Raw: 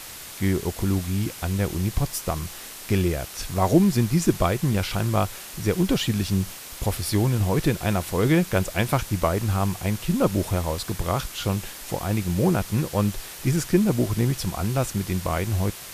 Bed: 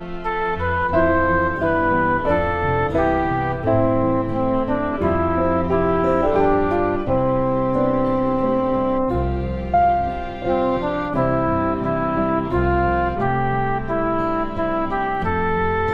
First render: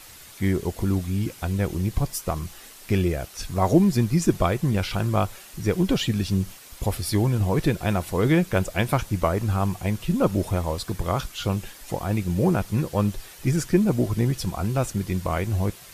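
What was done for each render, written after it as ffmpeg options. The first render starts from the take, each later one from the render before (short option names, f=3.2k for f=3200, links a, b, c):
-af "afftdn=nr=8:nf=-39"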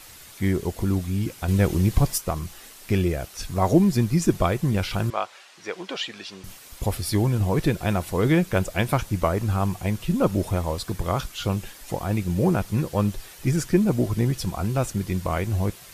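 -filter_complex "[0:a]asettb=1/sr,asplit=3[a][b][c];[a]atrim=end=1.484[d];[b]atrim=start=1.48:end=2.18,asetpts=PTS-STARTPTS,afade=t=in:d=0.004:c=qsin,afade=t=out:st=0.696:d=0.004:c=qsin,acontrast=23[e];[c]atrim=start=2.176[f];[d][e]acrossfade=d=0.004:c1=hsin:c2=qsin[g];[g][f]acrossfade=d=0.004:c1=qsin:c2=hsin,asettb=1/sr,asplit=3[h][i][j];[h]atrim=end=5.104[k];[i]atrim=start=5.1:end=6.44,asetpts=PTS-STARTPTS,afade=t=in:d=0.004:c=qsin,afade=t=out:st=1.336:d=0.004:c=qsin,highpass=650,lowpass=4.9k[l];[j]atrim=start=6.436[m];[k][l]acrossfade=d=0.004:c1=hsin:c2=qsin[n];[n][m]acrossfade=d=0.004:c1=qsin:c2=hsin"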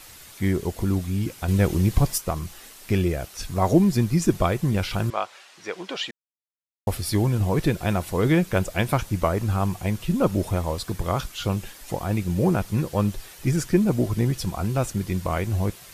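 -filter_complex "[0:a]asplit=3[a][b][c];[a]atrim=end=6.11,asetpts=PTS-STARTPTS,afade=t=out:st=6.106:d=0.004:c=hsin[d];[b]atrim=start=6.11:end=6.87,asetpts=PTS-STARTPTS,volume=0[e];[c]atrim=start=6.87,asetpts=PTS-STARTPTS,afade=t=in:d=0.004:c=hsin[f];[d][e][f]concat=n=3:v=0:a=1"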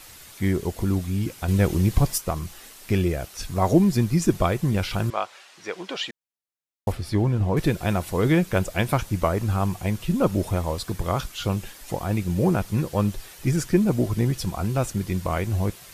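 -filter_complex "[0:a]asettb=1/sr,asplit=3[a][b][c];[a]atrim=end=6.924[d];[b]atrim=start=6.92:end=7.57,asetpts=PTS-STARTPTS,afade=t=in:d=0.004:c=qsin,afade=t=out:st=0.646:d=0.004:c=qsin,aemphasis=mode=reproduction:type=75kf[e];[c]atrim=start=7.566[f];[d][e]acrossfade=d=0.004:c1=hsin:c2=qsin[g];[g][f]acrossfade=d=0.004:c1=qsin:c2=hsin"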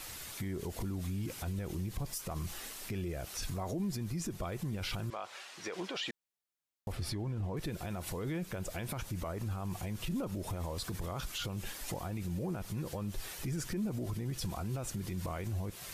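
-af "acompressor=threshold=-26dB:ratio=10,alimiter=level_in=5dB:limit=-24dB:level=0:latency=1:release=40,volume=-5dB"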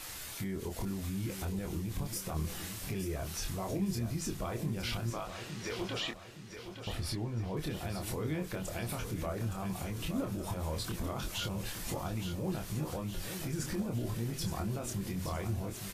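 -filter_complex "[0:a]asplit=2[a][b];[b]adelay=26,volume=-4.5dB[c];[a][c]amix=inputs=2:normalize=0,aecho=1:1:867|1734|2601|3468|4335:0.355|0.16|0.0718|0.0323|0.0145"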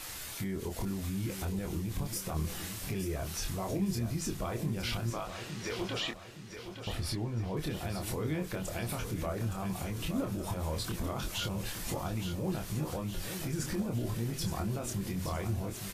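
-af "volume=1.5dB"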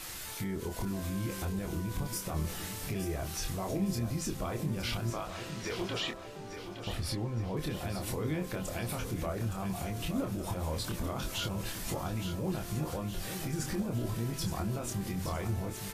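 -filter_complex "[1:a]volume=-30.5dB[a];[0:a][a]amix=inputs=2:normalize=0"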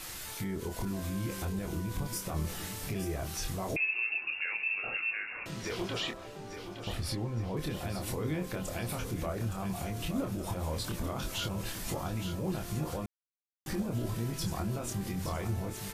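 -filter_complex "[0:a]asettb=1/sr,asplit=3[a][b][c];[a]atrim=end=3.764[d];[b]atrim=start=3.76:end=5.46,asetpts=PTS-STARTPTS,afade=t=in:d=0.004:c=qsin,afade=t=out:st=1.696:d=0.004:c=qsin,lowpass=f=2.4k:t=q:w=0.5098,lowpass=f=2.4k:t=q:w=0.6013,lowpass=f=2.4k:t=q:w=0.9,lowpass=f=2.4k:t=q:w=2.563,afreqshift=-2800[e];[c]atrim=start=5.456[f];[d][e]acrossfade=d=0.004:c1=hsin:c2=qsin[g];[g][f]acrossfade=d=0.004:c1=qsin:c2=hsin,asplit=3[h][i][j];[h]atrim=end=13.06,asetpts=PTS-STARTPTS,afade=t=out:st=13.056:d=0.004:c=hsin[k];[i]atrim=start=13.06:end=13.66,asetpts=PTS-STARTPTS,volume=0[l];[j]atrim=start=13.66,asetpts=PTS-STARTPTS,afade=t=in:d=0.004:c=hsin[m];[k][l][m]concat=n=3:v=0:a=1"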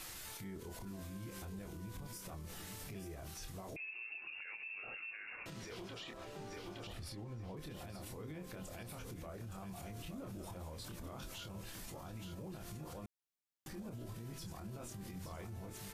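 -af "acompressor=threshold=-38dB:ratio=3,alimiter=level_in=15dB:limit=-24dB:level=0:latency=1:release=174,volume=-15dB"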